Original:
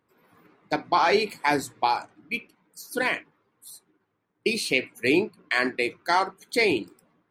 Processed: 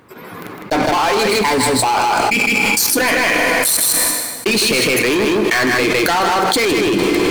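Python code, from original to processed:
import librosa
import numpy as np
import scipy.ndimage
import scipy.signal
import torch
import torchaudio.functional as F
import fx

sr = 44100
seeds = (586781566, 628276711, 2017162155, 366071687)

p1 = fx.ripple_eq(x, sr, per_octave=0.95, db=12, at=(1.19, 1.69))
p2 = fx.level_steps(p1, sr, step_db=16)
p3 = p1 + (p2 * 10.0 ** (2.5 / 20.0))
p4 = fx.leveller(p3, sr, passes=5)
p5 = p4 + fx.echo_single(p4, sr, ms=157, db=-4.5, dry=0)
p6 = fx.rev_plate(p5, sr, seeds[0], rt60_s=1.6, hf_ratio=0.85, predelay_ms=0, drr_db=14.0)
p7 = fx.env_flatten(p6, sr, amount_pct=100)
y = p7 * 10.0 ** (-9.5 / 20.0)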